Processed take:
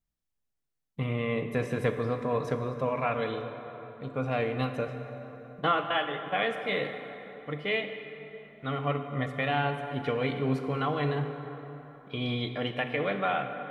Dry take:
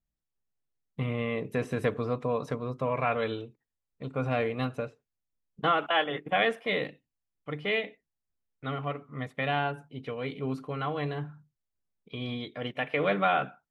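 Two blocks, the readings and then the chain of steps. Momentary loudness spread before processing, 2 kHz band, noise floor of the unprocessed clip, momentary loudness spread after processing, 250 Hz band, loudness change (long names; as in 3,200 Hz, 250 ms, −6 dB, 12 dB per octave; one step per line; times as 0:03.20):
13 LU, −0.5 dB, below −85 dBFS, 13 LU, +1.5 dB, 0.0 dB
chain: speech leveller 0.5 s
dense smooth reverb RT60 3.8 s, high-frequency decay 0.55×, DRR 6.5 dB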